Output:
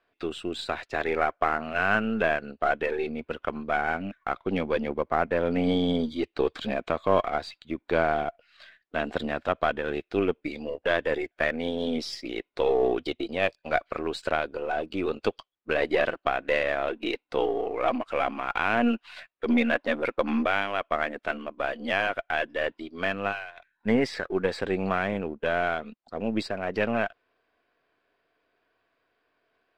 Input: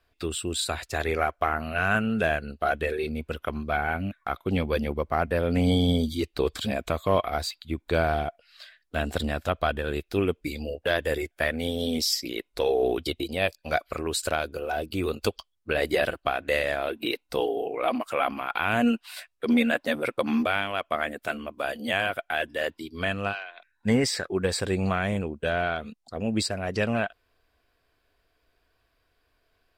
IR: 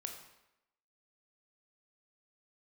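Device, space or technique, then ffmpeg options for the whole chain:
crystal radio: -filter_complex "[0:a]asettb=1/sr,asplit=3[s0][s1][s2];[s0]atrim=end=17.934[s3];[s1]atrim=start=17.93:end=18.34,asetpts=PTS-STARTPTS,afade=t=in:d=0.004:c=qsin,afade=t=out:st=0.406:d=0.004:c=qsin,equalizer=f=1200:w=1.5:g=-4[s4];[s2]atrim=start=18.336[s5];[s3][s4]acrossfade=d=0.004:c1=hsin:c2=qsin[s6];[s6][s5]acrossfade=d=0.004:c1=qsin:c2=hsin,highpass=210,lowpass=2800,aeval=exprs='if(lt(val(0),0),0.708*val(0),val(0))':c=same,volume=1.26"

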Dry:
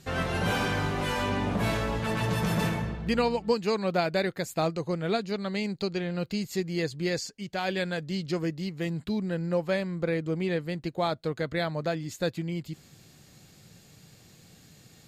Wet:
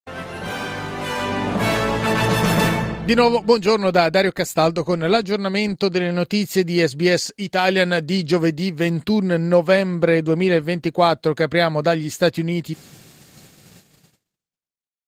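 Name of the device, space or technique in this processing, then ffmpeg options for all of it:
video call: -af "highpass=f=180:p=1,dynaudnorm=f=450:g=7:m=5.62,agate=range=0.00316:threshold=0.00708:ratio=16:detection=peak" -ar 48000 -c:a libopus -b:a 24k

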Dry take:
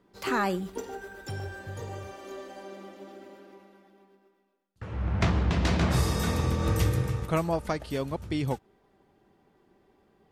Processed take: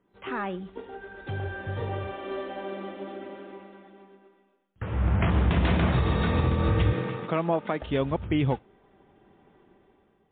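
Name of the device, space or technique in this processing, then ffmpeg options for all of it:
low-bitrate web radio: -filter_complex "[0:a]asettb=1/sr,asplit=3[s0][s1][s2];[s0]atrim=end=6.934[s3];[s1]atrim=start=6.93:end=7.82,asetpts=PTS-STARTPTS,afade=t=in:d=0.004:c=qsin,afade=t=out:st=0.886:d=0.004:c=qsin,highpass=f=170:w=0.5412,highpass=f=170:w=1.3066[s4];[s2]atrim=start=7.816[s5];[s3][s4]acrossfade=d=0.004:c1=hsin:c2=qsin[s6];[s6][s5]acrossfade=d=0.004:c1=qsin:c2=hsin,dynaudnorm=f=870:g=3:m=5.01,alimiter=limit=0.398:level=0:latency=1:release=99,volume=0.531" -ar 8000 -c:a libmp3lame -b:a 40k

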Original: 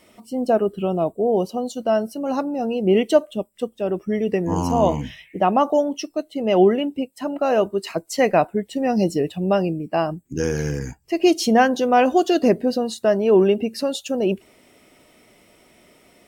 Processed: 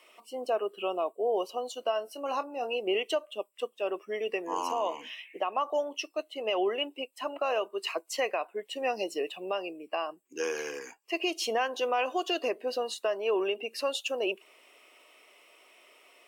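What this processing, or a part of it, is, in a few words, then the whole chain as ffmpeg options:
laptop speaker: -filter_complex "[0:a]highpass=f=390:w=0.5412,highpass=f=390:w=1.3066,equalizer=f=1100:t=o:w=0.3:g=10.5,equalizer=f=2700:t=o:w=0.52:g=11,alimiter=limit=0.224:level=0:latency=1:release=257,asettb=1/sr,asplit=3[s0][s1][s2];[s0]atrim=end=1.804[s3];[s1]atrim=start=1.8:end=2.79,asetpts=PTS-STARTPTS,afade=t=in:d=0.004:c=qsin,afade=t=out:st=0.986:d=0.004:c=qsin,asplit=2[s4][s5];[s5]adelay=25,volume=0.266[s6];[s4][s6]amix=inputs=2:normalize=0,atrim=end_sample=43659[s7];[s2]atrim=start=2.786[s8];[s3][s7]acrossfade=d=0.004:c1=hsin:c2=qsin[s9];[s9][s8]acrossfade=d=0.004:c1=qsin:c2=hsin,volume=0.447"

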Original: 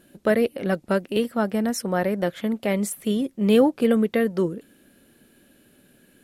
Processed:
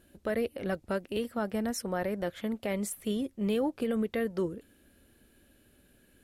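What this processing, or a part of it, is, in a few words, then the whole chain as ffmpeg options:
car stereo with a boomy subwoofer: -af "lowshelf=f=110:t=q:w=1.5:g=9.5,alimiter=limit=0.168:level=0:latency=1:release=83,volume=0.473"

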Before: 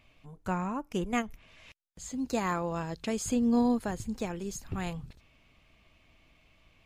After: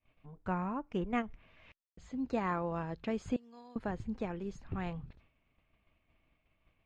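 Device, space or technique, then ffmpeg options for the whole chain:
hearing-loss simulation: -filter_complex "[0:a]lowpass=2400,agate=range=0.0224:threshold=0.00158:ratio=3:detection=peak,asettb=1/sr,asplit=3[s0][s1][s2];[s0]atrim=end=3.364[s3];[s1]atrim=start=3.36:end=3.76,asetpts=PTS-STARTPTS,afade=t=in:d=0.004:c=qsin,afade=t=out:st=0.396:d=0.004:c=qsin,aderivative[s4];[s2]atrim=start=3.756[s5];[s3][s4]acrossfade=d=0.004:c1=hsin:c2=qsin[s6];[s6][s5]acrossfade=d=0.004:c1=qsin:c2=hsin,volume=0.708"

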